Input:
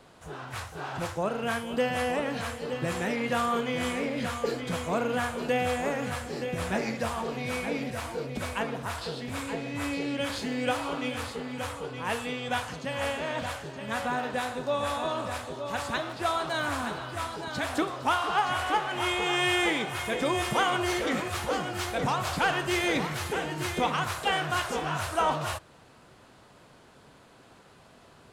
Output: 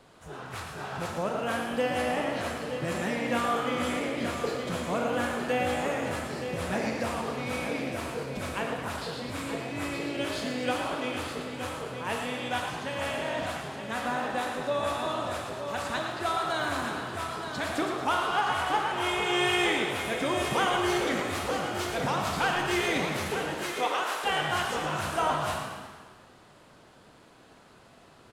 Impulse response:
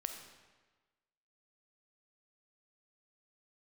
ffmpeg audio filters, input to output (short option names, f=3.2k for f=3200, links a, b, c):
-filter_complex "[0:a]asettb=1/sr,asplit=3[a][b][c];[a]atrim=end=23.544[d];[b]atrim=start=23.54:end=24.24,asetpts=PTS-STARTPTS,afade=t=in:d=0.004:c=qsin,afade=t=out:st=0.696:d=0.004:c=qsin,highpass=f=310:w=0.5412,highpass=f=310:w=1.3066[e];[c]atrim=start=24.236[f];[d][e]acrossfade=d=0.004:c1=hsin:c2=qsin[g];[g][f]acrossfade=d=0.004:c1=qsin:c2=hsin,asplit=8[h][i][j][k][l][m][n][o];[i]adelay=114,afreqshift=56,volume=-8dB[p];[j]adelay=228,afreqshift=112,volume=-13dB[q];[k]adelay=342,afreqshift=168,volume=-18.1dB[r];[l]adelay=456,afreqshift=224,volume=-23.1dB[s];[m]adelay=570,afreqshift=280,volume=-28.1dB[t];[n]adelay=684,afreqshift=336,volume=-33.2dB[u];[o]adelay=798,afreqshift=392,volume=-38.2dB[v];[h][p][q][r][s][t][u][v]amix=inputs=8:normalize=0[w];[1:a]atrim=start_sample=2205[x];[w][x]afir=irnorm=-1:irlink=0"